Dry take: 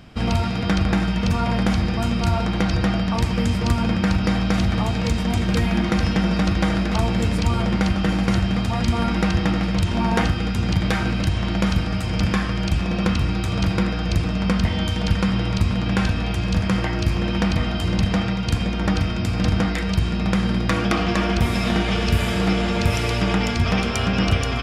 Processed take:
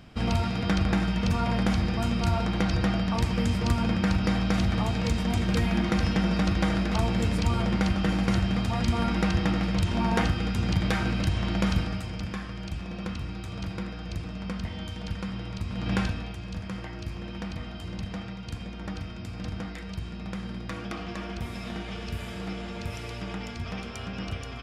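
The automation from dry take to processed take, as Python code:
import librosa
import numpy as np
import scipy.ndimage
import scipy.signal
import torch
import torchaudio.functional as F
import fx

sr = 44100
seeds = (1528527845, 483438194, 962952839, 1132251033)

y = fx.gain(x, sr, db=fx.line((11.8, -5.0), (12.22, -13.5), (15.67, -13.5), (15.94, -5.0), (16.37, -15.0)))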